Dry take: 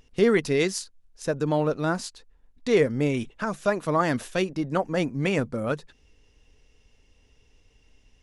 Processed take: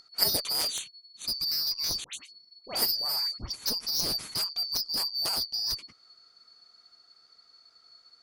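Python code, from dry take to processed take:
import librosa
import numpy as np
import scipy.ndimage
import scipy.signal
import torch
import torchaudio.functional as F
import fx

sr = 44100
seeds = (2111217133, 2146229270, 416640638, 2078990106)

y = fx.band_shuffle(x, sr, order='2341')
y = fx.dispersion(y, sr, late='highs', ms=95.0, hz=1700.0, at=(2.04, 3.52))
y = fx.cheby_harmonics(y, sr, harmonics=(2, 3, 7), levels_db=(-28, -7, -22), full_scale_db=-8.5)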